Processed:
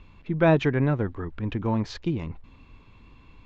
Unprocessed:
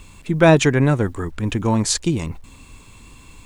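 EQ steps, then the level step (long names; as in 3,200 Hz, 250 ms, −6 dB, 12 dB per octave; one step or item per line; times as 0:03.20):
moving average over 5 samples
high-frequency loss of the air 160 metres
−6.5 dB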